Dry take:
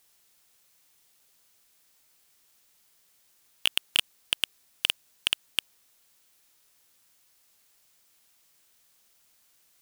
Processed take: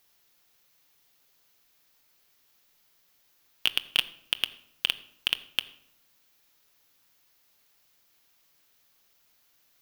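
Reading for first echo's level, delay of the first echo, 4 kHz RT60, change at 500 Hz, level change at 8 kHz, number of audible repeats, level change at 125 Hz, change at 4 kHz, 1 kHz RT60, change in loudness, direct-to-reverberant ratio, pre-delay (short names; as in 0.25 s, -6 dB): none, none, 0.50 s, +0.5 dB, -8.0 dB, none, n/a, -0.5 dB, 0.70 s, -0.5 dB, 11.5 dB, 7 ms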